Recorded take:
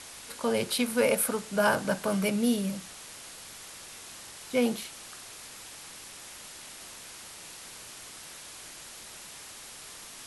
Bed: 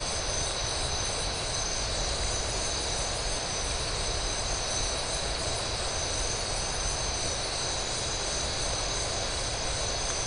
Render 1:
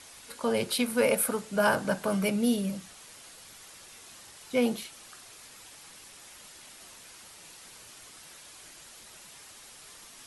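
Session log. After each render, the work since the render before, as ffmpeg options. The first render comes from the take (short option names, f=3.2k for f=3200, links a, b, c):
-af "afftdn=nr=6:nf=-46"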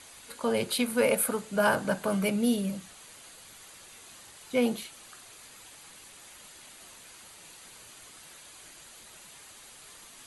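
-af "bandreject=f=5.4k:w=7.4"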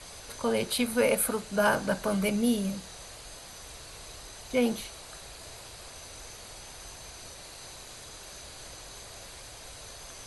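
-filter_complex "[1:a]volume=-16.5dB[a];[0:a][a]amix=inputs=2:normalize=0"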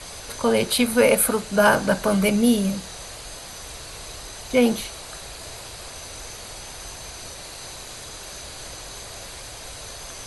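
-af "volume=8dB"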